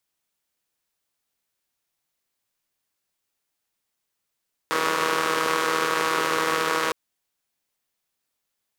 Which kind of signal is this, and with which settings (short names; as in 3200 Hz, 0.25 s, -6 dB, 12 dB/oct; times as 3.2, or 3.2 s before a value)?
four-cylinder engine model, steady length 2.21 s, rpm 4800, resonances 470/1100 Hz